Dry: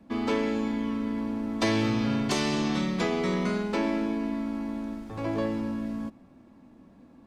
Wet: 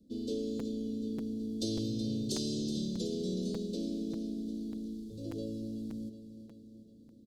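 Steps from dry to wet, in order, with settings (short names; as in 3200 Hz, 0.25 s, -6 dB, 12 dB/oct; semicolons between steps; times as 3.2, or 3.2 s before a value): elliptic band-stop 480–3800 Hz, stop band 40 dB; high shelf 3600 Hz +5.5 dB; feedback echo 0.373 s, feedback 58%, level -12 dB; crackling interface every 0.59 s, samples 256, repeat, from 0.59; gain -7.5 dB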